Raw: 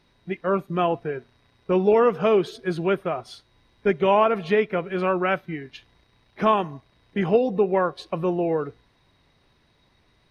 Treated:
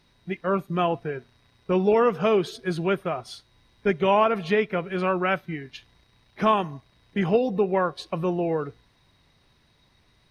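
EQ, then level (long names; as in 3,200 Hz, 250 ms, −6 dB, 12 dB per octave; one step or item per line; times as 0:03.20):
bass and treble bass +10 dB, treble +4 dB
low-shelf EQ 330 Hz −9.5 dB
0.0 dB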